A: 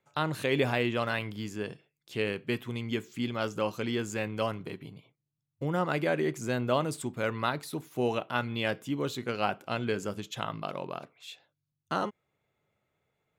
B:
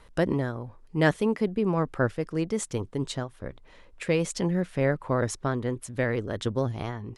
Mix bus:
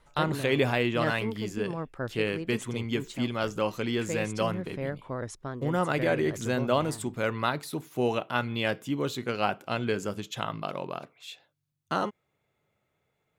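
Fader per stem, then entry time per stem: +2.0 dB, -9.0 dB; 0.00 s, 0.00 s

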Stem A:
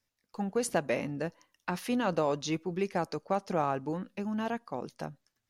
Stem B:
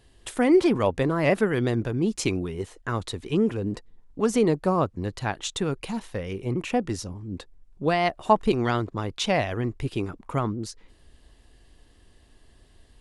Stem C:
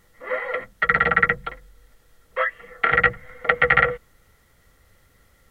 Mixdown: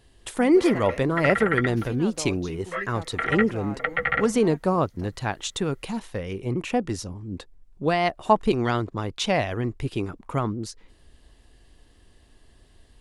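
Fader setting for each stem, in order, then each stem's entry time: -8.0 dB, +0.5 dB, -8.0 dB; 0.00 s, 0.00 s, 0.35 s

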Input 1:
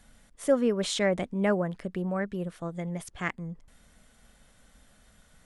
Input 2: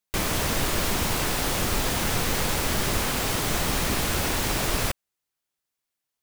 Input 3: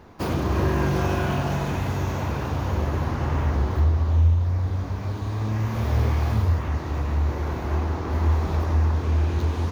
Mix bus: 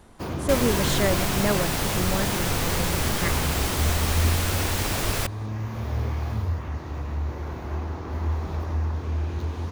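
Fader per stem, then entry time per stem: +1.0 dB, -1.0 dB, -5.5 dB; 0.00 s, 0.35 s, 0.00 s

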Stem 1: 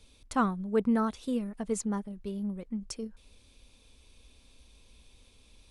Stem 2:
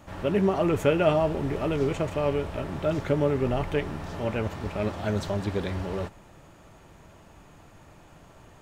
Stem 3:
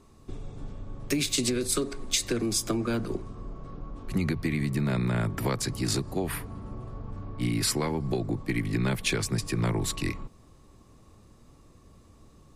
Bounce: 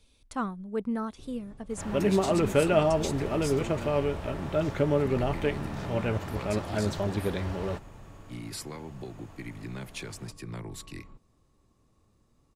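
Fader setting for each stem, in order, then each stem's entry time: -4.5 dB, -1.0 dB, -12.0 dB; 0.00 s, 1.70 s, 0.90 s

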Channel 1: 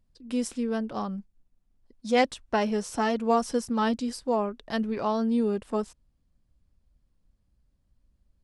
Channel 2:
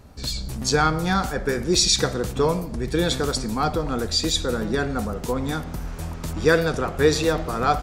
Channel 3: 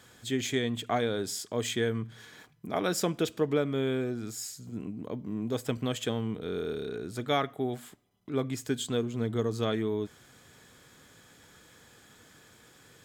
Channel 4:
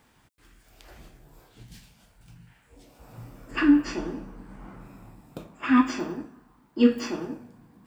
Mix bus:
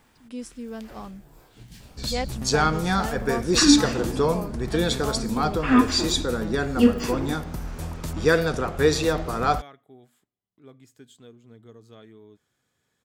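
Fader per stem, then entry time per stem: -7.0 dB, -1.5 dB, -18.5 dB, +1.5 dB; 0.00 s, 1.80 s, 2.30 s, 0.00 s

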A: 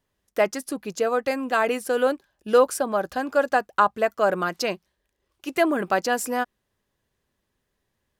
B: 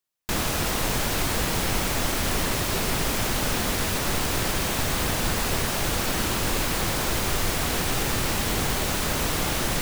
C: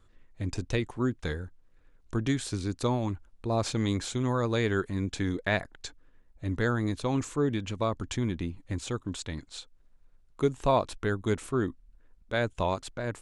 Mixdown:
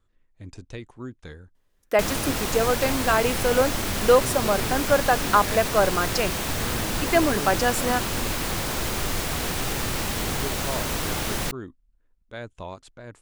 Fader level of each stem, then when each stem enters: +0.5 dB, -2.0 dB, -8.5 dB; 1.55 s, 1.70 s, 0.00 s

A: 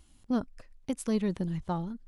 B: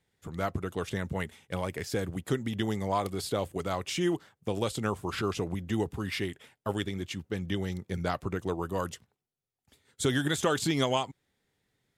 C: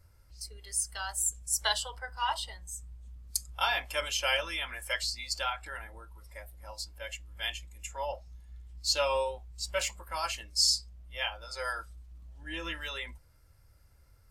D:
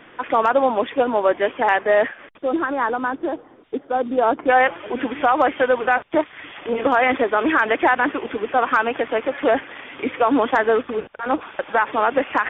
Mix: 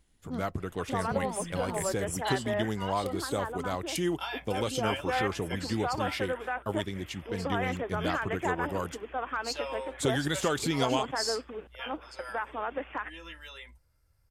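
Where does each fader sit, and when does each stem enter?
-9.0 dB, -1.5 dB, -8.0 dB, -15.5 dB; 0.00 s, 0.00 s, 0.60 s, 0.60 s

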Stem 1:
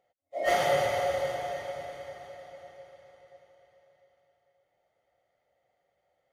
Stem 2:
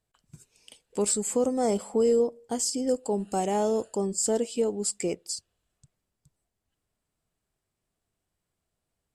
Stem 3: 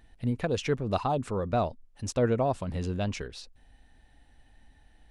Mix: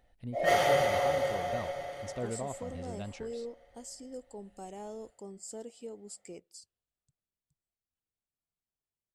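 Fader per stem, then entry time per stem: 0.0 dB, -17.5 dB, -11.5 dB; 0.00 s, 1.25 s, 0.00 s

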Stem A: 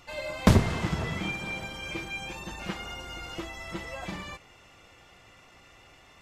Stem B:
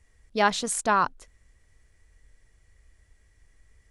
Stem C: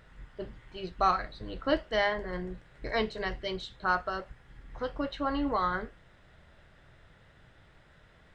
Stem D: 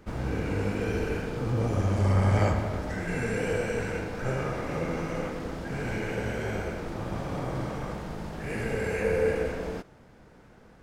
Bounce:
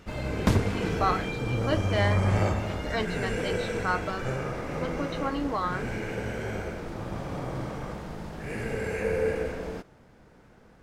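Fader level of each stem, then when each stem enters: -4.5 dB, mute, -0.5 dB, -1.5 dB; 0.00 s, mute, 0.00 s, 0.00 s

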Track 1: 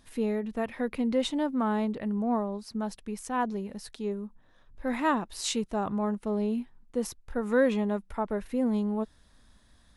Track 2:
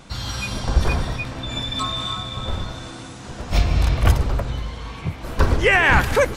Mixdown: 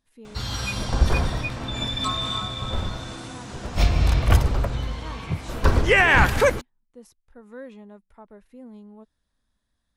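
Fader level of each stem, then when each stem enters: -16.0 dB, -1.0 dB; 0.00 s, 0.25 s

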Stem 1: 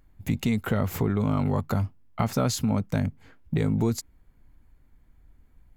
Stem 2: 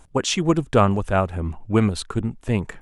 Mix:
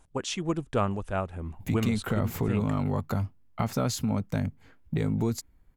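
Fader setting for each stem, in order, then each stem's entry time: -3.0 dB, -10.0 dB; 1.40 s, 0.00 s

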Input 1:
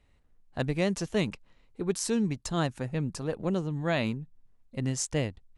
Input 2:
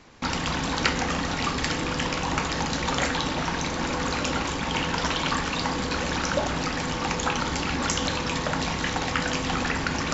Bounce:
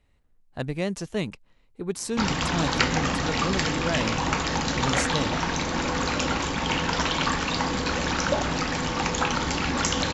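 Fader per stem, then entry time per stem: -0.5 dB, +1.0 dB; 0.00 s, 1.95 s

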